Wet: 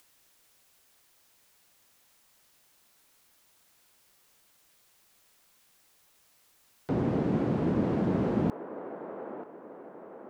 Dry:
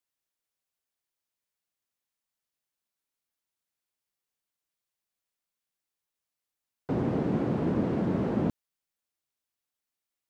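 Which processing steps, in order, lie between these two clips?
on a send: band-limited delay 0.936 s, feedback 46%, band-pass 840 Hz, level -6 dB; on the sum: upward compressor, threshold -45 dBFS

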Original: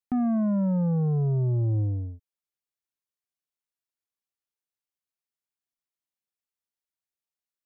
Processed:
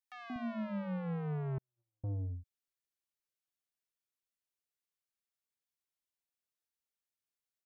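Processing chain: soft clip -32 dBFS, distortion -13 dB; three bands offset in time highs, mids, lows 0.18/0.24 s, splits 230/850 Hz; 1.58–2.04 gate -27 dBFS, range -58 dB; gain -2.5 dB

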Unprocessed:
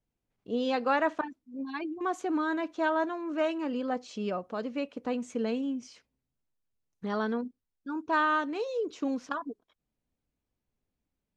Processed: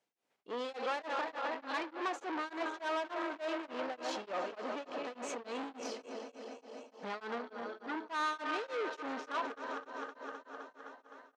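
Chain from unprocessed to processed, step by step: regenerating reverse delay 0.129 s, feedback 84%, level -13.5 dB; limiter -27 dBFS, peak gain reduction 11.5 dB; frequency-shifting echo 0.369 s, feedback 62%, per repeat +110 Hz, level -21.5 dB; soft clip -38.5 dBFS, distortion -9 dB; HPF 490 Hz 12 dB/oct; air absorption 51 m; beating tremolo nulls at 3.4 Hz; gain +9.5 dB

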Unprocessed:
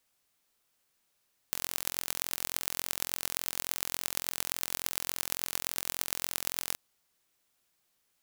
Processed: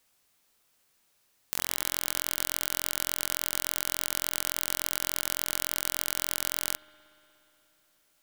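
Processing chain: spring tank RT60 3.4 s, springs 59 ms, chirp 55 ms, DRR 19.5 dB; limiter -7 dBFS, peak gain reduction 5.5 dB; gain +6 dB

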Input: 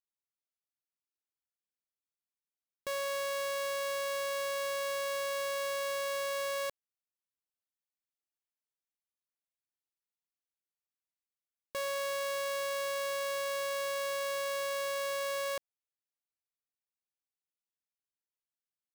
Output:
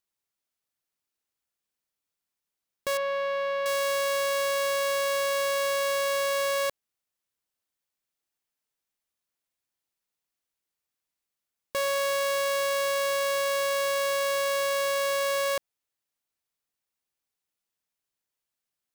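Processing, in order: 2.97–3.66 air absorption 330 m; gain +8 dB

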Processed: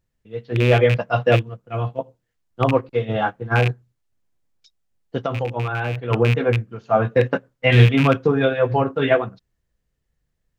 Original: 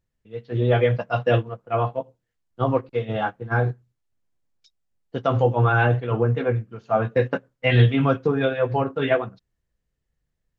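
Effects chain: rattling part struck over -19 dBFS, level -16 dBFS; 1.36–1.99 bell 850 Hz -10.5 dB 2.5 oct; 5.17–6.1 compressor 6:1, threshold -25 dBFS, peak gain reduction 11.5 dB; gain +3.5 dB

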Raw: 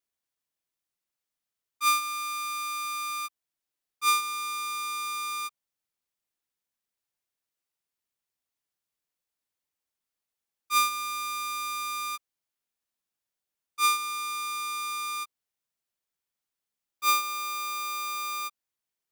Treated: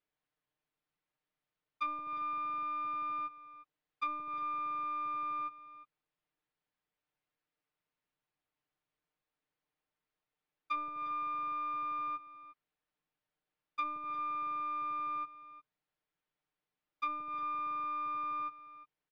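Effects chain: comb 6.6 ms, depth 64%; dynamic EQ 1300 Hz, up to -7 dB, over -35 dBFS, Q 0.83; in parallel at +1 dB: negative-ratio compressor -32 dBFS, ratio -1; on the sum: treble ducked by the level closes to 790 Hz, closed at -21 dBFS; air absorption 340 m; echo 0.354 s -15.5 dB; gain -3.5 dB

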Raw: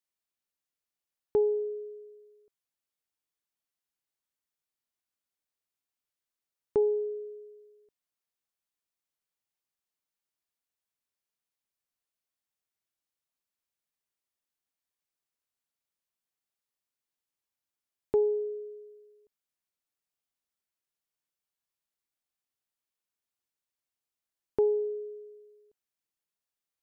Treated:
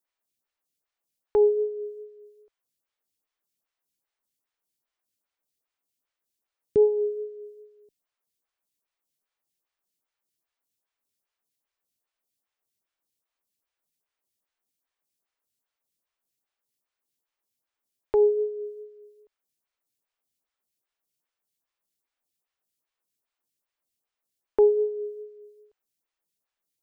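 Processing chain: photocell phaser 2.5 Hz; gain +8 dB

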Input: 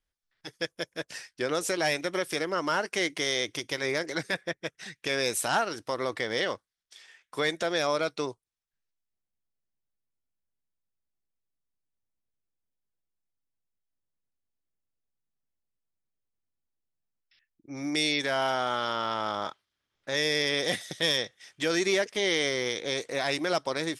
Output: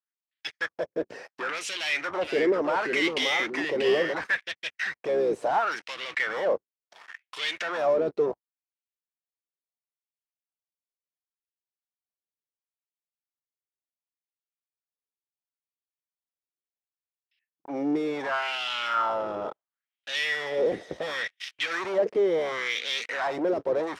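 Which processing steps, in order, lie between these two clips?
octaver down 1 oct, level -5 dB; LPF 9200 Hz 12 dB/oct; notch 3500 Hz, Q 21; sample leveller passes 5; limiter -19.5 dBFS, peak gain reduction 5.5 dB; wah 0.71 Hz 400–3100 Hz, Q 2.6; 1.75–4.24 echoes that change speed 0.462 s, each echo -2 st, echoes 2, each echo -6 dB; gain +3.5 dB

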